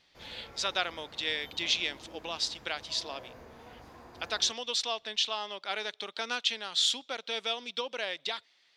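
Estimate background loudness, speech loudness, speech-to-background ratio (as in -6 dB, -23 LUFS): -51.5 LUFS, -32.0 LUFS, 19.5 dB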